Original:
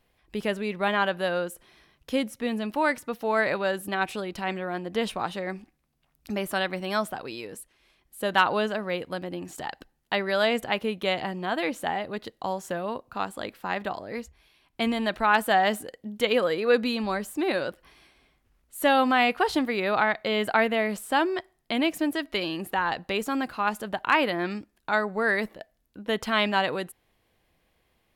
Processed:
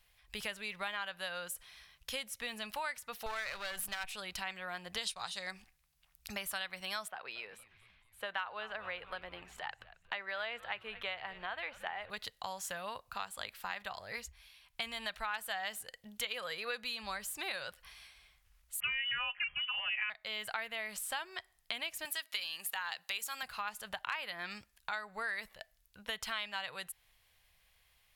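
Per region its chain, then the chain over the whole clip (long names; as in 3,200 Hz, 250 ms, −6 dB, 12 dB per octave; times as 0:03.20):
0:03.26–0:04.04: gain on one half-wave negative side −12 dB + envelope flattener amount 50%
0:04.97–0:05.51: downward expander −35 dBFS + flat-topped bell 6,000 Hz +10.5 dB
0:07.08–0:12.10: three-way crossover with the lows and the highs turned down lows −20 dB, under 220 Hz, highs −21 dB, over 3,000 Hz + echo with shifted repeats 230 ms, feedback 53%, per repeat −120 Hz, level −20 dB
0:18.80–0:20.10: low-shelf EQ 180 Hz −9.5 dB + comb filter 4.6 ms, depth 89% + voice inversion scrambler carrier 3,200 Hz
0:22.05–0:23.43: high-pass filter 150 Hz 6 dB per octave + spectral tilt +2.5 dB per octave
whole clip: guitar amp tone stack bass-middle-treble 10-0-10; downward compressor 4 to 1, threshold −43 dBFS; level +5.5 dB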